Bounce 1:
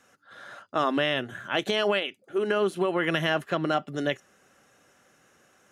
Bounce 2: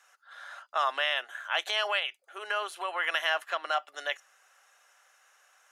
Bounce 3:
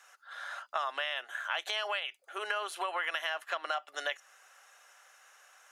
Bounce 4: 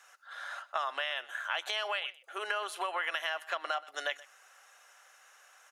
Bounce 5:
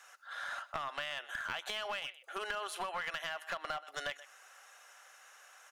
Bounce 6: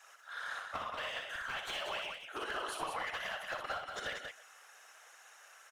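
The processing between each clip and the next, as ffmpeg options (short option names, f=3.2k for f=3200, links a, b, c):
-af "highpass=f=740:w=0.5412,highpass=f=740:w=1.3066"
-af "acompressor=threshold=-34dB:ratio=6,volume=3.5dB"
-af "aecho=1:1:126:0.0944"
-af "acompressor=threshold=-37dB:ratio=3,aeval=exprs='clip(val(0),-1,0.0158)':c=same,volume=1.5dB"
-filter_complex "[0:a]afftfilt=real='hypot(re,im)*cos(2*PI*random(0))':imag='hypot(re,im)*sin(2*PI*random(1))':win_size=512:overlap=0.75,asplit=2[a][b];[b]aecho=0:1:61.22|186.6:0.562|0.501[c];[a][c]amix=inputs=2:normalize=0,volume=4dB"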